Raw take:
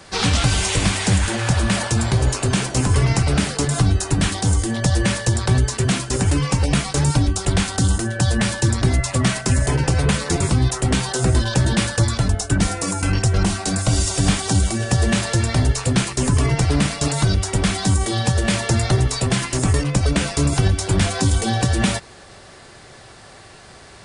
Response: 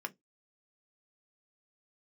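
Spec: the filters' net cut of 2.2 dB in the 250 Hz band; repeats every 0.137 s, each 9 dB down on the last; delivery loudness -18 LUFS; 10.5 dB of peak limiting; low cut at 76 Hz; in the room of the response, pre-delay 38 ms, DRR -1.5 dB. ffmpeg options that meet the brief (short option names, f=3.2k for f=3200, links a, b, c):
-filter_complex "[0:a]highpass=76,equalizer=f=250:t=o:g=-3,alimiter=limit=-15.5dB:level=0:latency=1,aecho=1:1:137|274|411|548:0.355|0.124|0.0435|0.0152,asplit=2[a][b];[1:a]atrim=start_sample=2205,adelay=38[c];[b][c]afir=irnorm=-1:irlink=0,volume=0.5dB[d];[a][d]amix=inputs=2:normalize=0,volume=4dB"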